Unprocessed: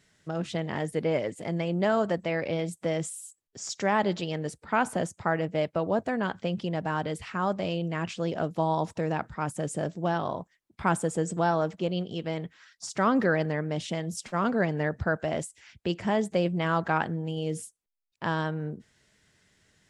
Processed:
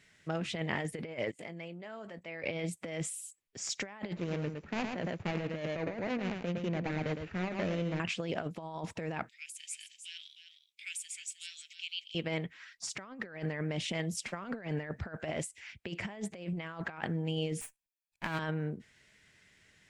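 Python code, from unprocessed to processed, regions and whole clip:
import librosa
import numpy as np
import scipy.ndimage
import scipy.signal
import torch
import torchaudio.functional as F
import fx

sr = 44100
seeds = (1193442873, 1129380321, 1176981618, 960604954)

y = fx.chain(x, sr, fx.highpass(hz=170.0, slope=6),
    fx.level_steps(step_db=22),
    fx.doubler(ms=18.0, db=-12.5), at=(1.31, 2.44))
y = fx.chain(y, sr, fx.median_filter(points=41),
    fx.brickwall_lowpass(high_hz=7600.0),
    fx.echo_single(ms=110, db=-7.0), at=(4.15, 8.0))
y = fx.chain(y, sr, fx.steep_highpass(hz=2400.0, slope=48),
    fx.echo_single(ms=309, db=-10.0), at=(9.29, 12.15))
y = fx.chain(y, sr, fx.lower_of_two(delay_ms=1.2),
    fx.high_shelf(hz=5500.0, db=7.5),
    fx.upward_expand(threshold_db=-40.0, expansion=1.5), at=(17.61, 18.39))
y = fx.peak_eq(y, sr, hz=2300.0, db=9.0, octaves=0.92)
y = fx.over_compress(y, sr, threshold_db=-30.0, ratio=-0.5)
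y = y * librosa.db_to_amplitude(-5.0)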